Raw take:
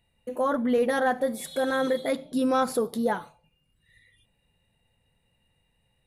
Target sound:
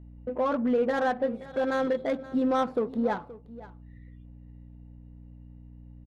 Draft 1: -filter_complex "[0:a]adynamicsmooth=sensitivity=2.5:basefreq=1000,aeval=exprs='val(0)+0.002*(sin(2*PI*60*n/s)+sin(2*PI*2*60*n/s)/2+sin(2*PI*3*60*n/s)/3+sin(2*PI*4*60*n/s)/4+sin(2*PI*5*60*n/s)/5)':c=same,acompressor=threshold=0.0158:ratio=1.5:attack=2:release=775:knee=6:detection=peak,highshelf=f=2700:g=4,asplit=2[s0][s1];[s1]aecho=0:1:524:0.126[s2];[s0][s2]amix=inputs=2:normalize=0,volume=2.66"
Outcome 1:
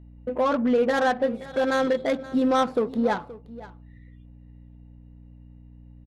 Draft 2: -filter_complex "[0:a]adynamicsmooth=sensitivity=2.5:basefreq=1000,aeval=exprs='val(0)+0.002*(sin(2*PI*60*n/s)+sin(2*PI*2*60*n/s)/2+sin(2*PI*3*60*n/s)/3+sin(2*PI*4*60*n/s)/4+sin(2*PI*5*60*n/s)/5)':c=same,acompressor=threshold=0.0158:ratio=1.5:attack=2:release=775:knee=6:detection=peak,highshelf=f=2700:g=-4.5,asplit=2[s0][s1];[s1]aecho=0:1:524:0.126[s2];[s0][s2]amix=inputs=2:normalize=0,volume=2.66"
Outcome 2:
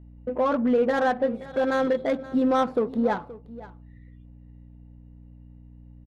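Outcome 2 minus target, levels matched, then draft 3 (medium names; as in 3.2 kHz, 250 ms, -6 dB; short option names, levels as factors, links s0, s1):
compression: peak gain reduction -3.5 dB
-filter_complex "[0:a]adynamicsmooth=sensitivity=2.5:basefreq=1000,aeval=exprs='val(0)+0.002*(sin(2*PI*60*n/s)+sin(2*PI*2*60*n/s)/2+sin(2*PI*3*60*n/s)/3+sin(2*PI*4*60*n/s)/4+sin(2*PI*5*60*n/s)/5)':c=same,acompressor=threshold=0.00473:ratio=1.5:attack=2:release=775:knee=6:detection=peak,highshelf=f=2700:g=-4.5,asplit=2[s0][s1];[s1]aecho=0:1:524:0.126[s2];[s0][s2]amix=inputs=2:normalize=0,volume=2.66"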